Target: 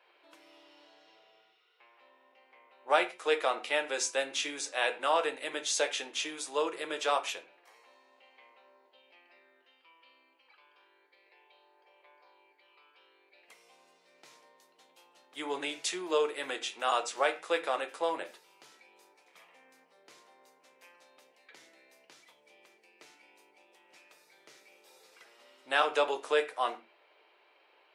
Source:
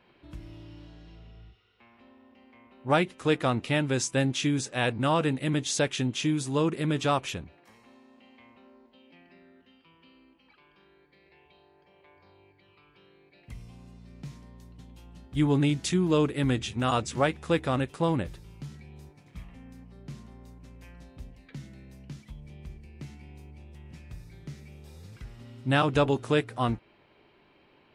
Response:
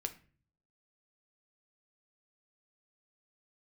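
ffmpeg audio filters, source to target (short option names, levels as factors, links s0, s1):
-filter_complex "[0:a]highpass=f=490:w=0.5412,highpass=f=490:w=1.3066[s0];[1:a]atrim=start_sample=2205,atrim=end_sample=6615[s1];[s0][s1]afir=irnorm=-1:irlink=0"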